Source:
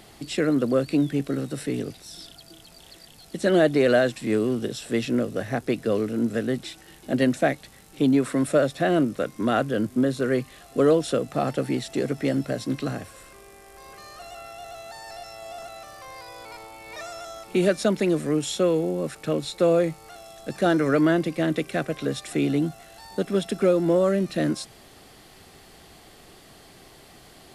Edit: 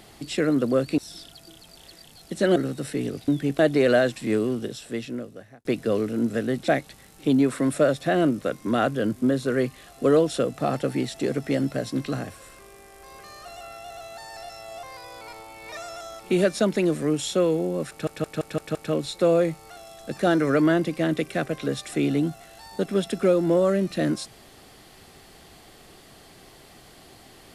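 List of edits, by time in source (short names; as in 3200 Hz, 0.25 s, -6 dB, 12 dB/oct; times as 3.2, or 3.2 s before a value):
0.98–1.29 swap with 2.01–3.59
4.31–5.65 fade out
6.68–7.42 cut
15.57–16.07 cut
19.14 stutter 0.17 s, 6 plays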